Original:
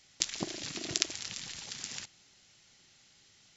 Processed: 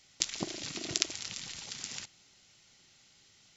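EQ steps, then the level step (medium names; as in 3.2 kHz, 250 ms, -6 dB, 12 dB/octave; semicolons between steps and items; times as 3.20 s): band-stop 1.7 kHz, Q 18; 0.0 dB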